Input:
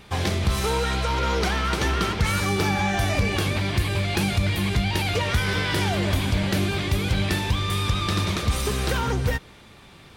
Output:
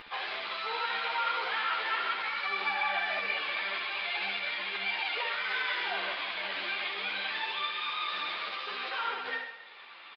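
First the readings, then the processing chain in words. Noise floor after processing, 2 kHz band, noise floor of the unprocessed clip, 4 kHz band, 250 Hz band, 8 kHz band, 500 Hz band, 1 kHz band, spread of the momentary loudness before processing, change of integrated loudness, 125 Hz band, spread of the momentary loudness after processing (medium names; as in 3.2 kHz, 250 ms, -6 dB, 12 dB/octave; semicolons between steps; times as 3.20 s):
-50 dBFS, -3.0 dB, -48 dBFS, -5.5 dB, -28.0 dB, under -35 dB, -14.5 dB, -5.0 dB, 2 LU, -8.0 dB, under -40 dB, 5 LU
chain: high-pass 680 Hz 12 dB/octave; tilt EQ +4 dB/octave; upward compressor, threshold -34 dBFS; peak limiter -14.5 dBFS, peak gain reduction 9.5 dB; vibrato 11 Hz 12 cents; distance through air 400 m; flutter echo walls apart 11.2 m, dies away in 0.83 s; resampled via 11.025 kHz; three-phase chorus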